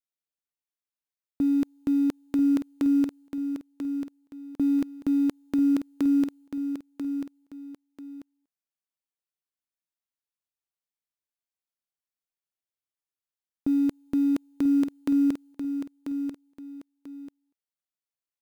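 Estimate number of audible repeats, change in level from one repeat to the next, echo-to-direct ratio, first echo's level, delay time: 2, −10.0 dB, −7.5 dB, −8.0 dB, 990 ms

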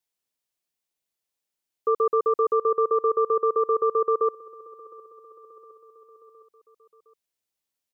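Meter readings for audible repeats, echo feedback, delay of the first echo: 3, 58%, 712 ms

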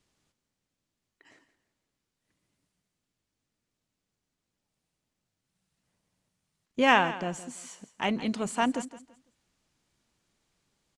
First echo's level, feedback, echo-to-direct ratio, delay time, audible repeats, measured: −15.0 dB, 26%, −14.5 dB, 167 ms, 2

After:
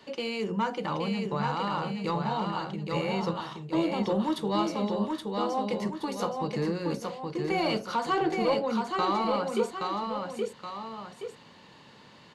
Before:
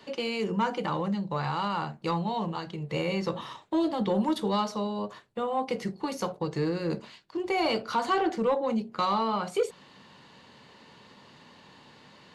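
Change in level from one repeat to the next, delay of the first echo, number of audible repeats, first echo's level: −6.5 dB, 823 ms, 2, −4.0 dB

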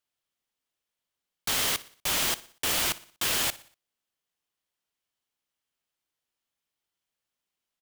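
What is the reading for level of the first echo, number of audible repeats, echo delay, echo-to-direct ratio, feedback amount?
−19.0 dB, 3, 60 ms, −18.0 dB, 47%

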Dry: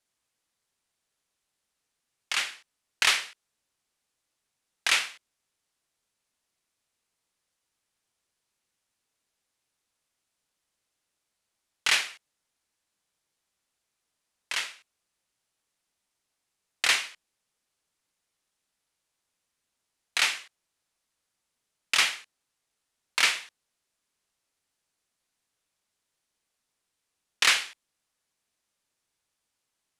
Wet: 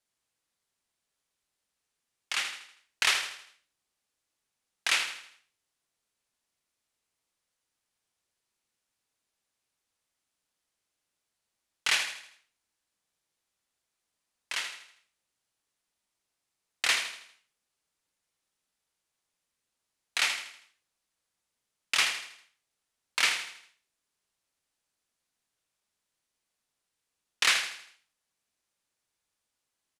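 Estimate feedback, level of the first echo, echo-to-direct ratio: 44%, −9.0 dB, −8.0 dB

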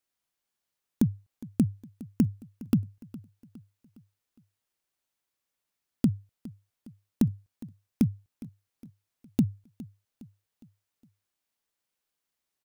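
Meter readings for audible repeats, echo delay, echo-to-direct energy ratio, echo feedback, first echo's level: 3, 411 ms, −18.0 dB, 47%, −19.0 dB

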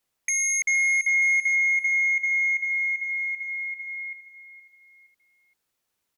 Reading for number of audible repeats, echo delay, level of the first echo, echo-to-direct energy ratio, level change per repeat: 3, 468 ms, −13.0 dB, −12.5 dB, −9.0 dB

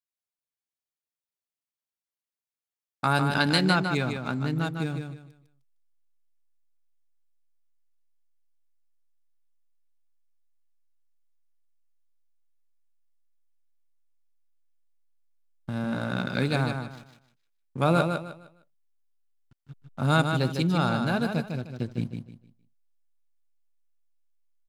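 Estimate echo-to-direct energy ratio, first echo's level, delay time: −5.5 dB, −6.0 dB, 153 ms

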